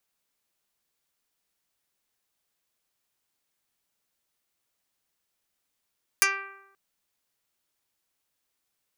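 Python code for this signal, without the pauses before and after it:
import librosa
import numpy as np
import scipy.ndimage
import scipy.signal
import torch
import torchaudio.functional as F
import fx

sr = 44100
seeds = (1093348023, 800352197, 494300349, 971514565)

y = fx.pluck(sr, length_s=0.53, note=67, decay_s=0.98, pick=0.1, brightness='dark')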